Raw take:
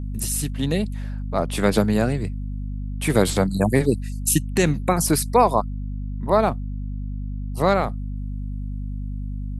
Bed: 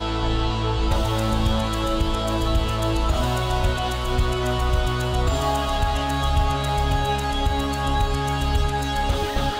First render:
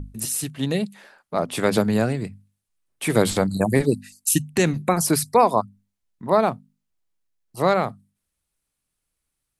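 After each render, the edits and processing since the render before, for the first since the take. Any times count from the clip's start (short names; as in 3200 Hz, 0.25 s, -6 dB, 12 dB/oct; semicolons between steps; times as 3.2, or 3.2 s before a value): notches 50/100/150/200/250 Hz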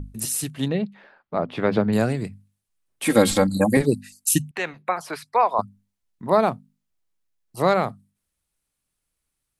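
0.68–1.93 air absorption 310 m; 3.05–3.77 comb 3.7 ms, depth 84%; 4.51–5.59 three-band isolator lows -22 dB, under 550 Hz, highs -22 dB, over 3400 Hz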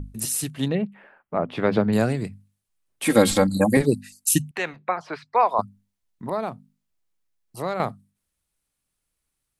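0.75–1.5 band shelf 4900 Hz -14 dB 1.1 oct; 4.76–5.37 air absorption 170 m; 6.29–7.8 compressor 1.5:1, threshold -38 dBFS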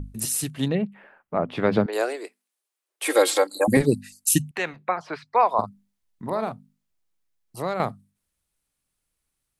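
1.86–3.68 steep high-pass 340 Hz 48 dB/oct; 5.57–6.52 doubler 45 ms -9.5 dB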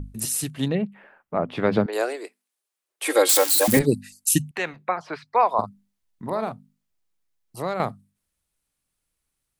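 3.29–3.79 switching spikes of -12.5 dBFS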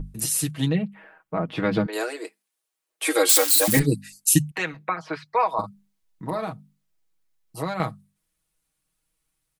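comb 6.3 ms, depth 74%; dynamic EQ 620 Hz, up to -6 dB, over -29 dBFS, Q 0.71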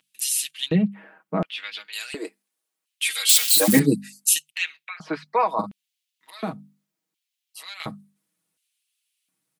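LFO high-pass square 0.7 Hz 210–2900 Hz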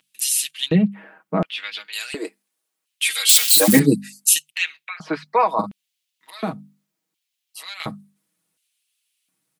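gain +3.5 dB; limiter -1 dBFS, peak gain reduction 1.5 dB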